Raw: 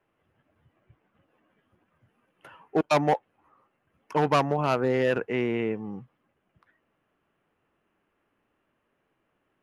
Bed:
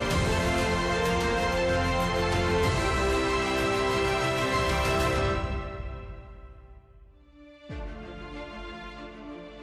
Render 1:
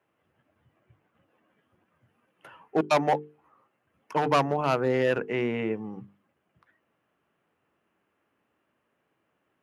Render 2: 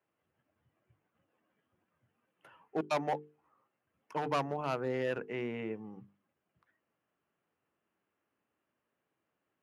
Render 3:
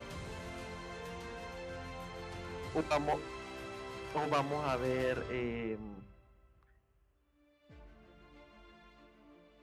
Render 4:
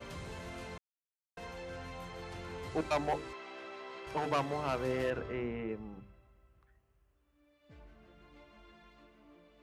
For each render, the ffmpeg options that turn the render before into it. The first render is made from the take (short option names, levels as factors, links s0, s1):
-af "highpass=79,bandreject=f=50:t=h:w=6,bandreject=f=100:t=h:w=6,bandreject=f=150:t=h:w=6,bandreject=f=200:t=h:w=6,bandreject=f=250:t=h:w=6,bandreject=f=300:t=h:w=6,bandreject=f=350:t=h:w=6,bandreject=f=400:t=h:w=6,bandreject=f=450:t=h:w=6"
-af "volume=0.335"
-filter_complex "[1:a]volume=0.112[s0];[0:a][s0]amix=inputs=2:normalize=0"
-filter_complex "[0:a]asettb=1/sr,asplit=3[s0][s1][s2];[s0]atrim=end=3.334[s3];[s1]atrim=start=3.33:end=4.07,asetpts=PTS-STARTPTS,afade=t=in:d=0.004:c=qsin,afade=t=out:st=0.736:d=0.004:c=qsin,highpass=360,lowpass=4300[s4];[s2]atrim=start=4.066[s5];[s3][s4]acrossfade=d=0.004:c1=hsin:c2=qsin[s6];[s6][s5]acrossfade=d=0.004:c1=qsin:c2=hsin,asettb=1/sr,asplit=3[s7][s8][s9];[s7]atrim=end=5.104[s10];[s8]atrim=start=5.1:end=5.69,asetpts=PTS-STARTPTS,afade=t=in:d=0.004:c=qsin,afade=t=out:st=0.586:d=0.004:c=qsin,aemphasis=mode=reproduction:type=75kf[s11];[s9]atrim=start=5.686[s12];[s10][s11]acrossfade=d=0.004:c1=hsin:c2=qsin[s13];[s13][s12]acrossfade=d=0.004:c1=qsin:c2=hsin,asplit=3[s14][s15][s16];[s14]atrim=end=0.78,asetpts=PTS-STARTPTS,afade=t=out:st=0.776:d=0.004:c=hsin[s17];[s15]atrim=start=0.78:end=1.37,asetpts=PTS-STARTPTS,volume=0[s18];[s16]atrim=start=1.37,asetpts=PTS-STARTPTS,afade=t=in:d=0.004:c=hsin[s19];[s17][s18][s19]concat=n=3:v=0:a=1"